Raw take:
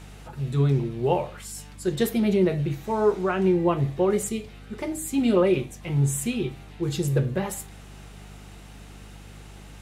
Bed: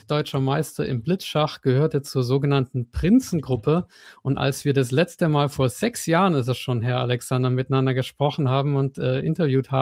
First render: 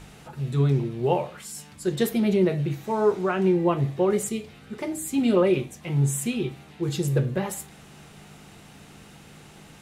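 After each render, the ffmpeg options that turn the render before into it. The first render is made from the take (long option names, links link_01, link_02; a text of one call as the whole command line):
ffmpeg -i in.wav -af "bandreject=frequency=50:width_type=h:width=4,bandreject=frequency=100:width_type=h:width=4" out.wav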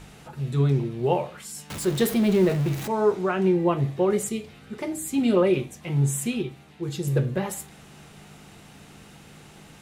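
ffmpeg -i in.wav -filter_complex "[0:a]asettb=1/sr,asplit=3[link_01][link_02][link_03];[link_01]atrim=end=1.704[link_04];[link_02]atrim=start=1.7:end=2.88,asetpts=PTS-STARTPTS,afade=type=in:duration=0.004:curve=qsin,afade=type=out:start_time=1.176:duration=0.004:curve=qsin,aeval=exprs='val(0)+0.5*0.0335*sgn(val(0))':channel_layout=same[link_05];[link_03]atrim=start=2.876[link_06];[link_04][link_05]acrossfade=duration=0.004:curve1=hsin:curve2=qsin[link_07];[link_07][link_06]acrossfade=duration=0.004:curve1=qsin:curve2=hsin,asplit=3[link_08][link_09][link_10];[link_08]atrim=end=6.422[link_11];[link_09]atrim=start=6.418:end=7.072,asetpts=PTS-STARTPTS,volume=-3.5dB[link_12];[link_10]atrim=start=7.068[link_13];[link_11][link_12]acrossfade=duration=0.004:curve1=hsin:curve2=hsin[link_14];[link_14][link_13]acrossfade=duration=0.004:curve1=hsin:curve2=hsin" out.wav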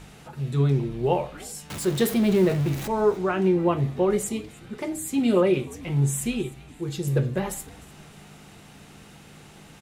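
ffmpeg -i in.wav -filter_complex "[0:a]asplit=4[link_01][link_02][link_03][link_04];[link_02]adelay=304,afreqshift=-100,volume=-22dB[link_05];[link_03]adelay=608,afreqshift=-200,volume=-29.7dB[link_06];[link_04]adelay=912,afreqshift=-300,volume=-37.5dB[link_07];[link_01][link_05][link_06][link_07]amix=inputs=4:normalize=0" out.wav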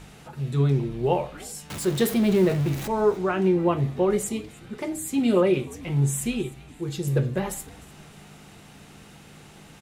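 ffmpeg -i in.wav -af anull out.wav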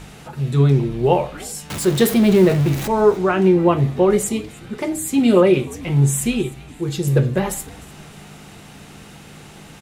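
ffmpeg -i in.wav -af "volume=7dB" out.wav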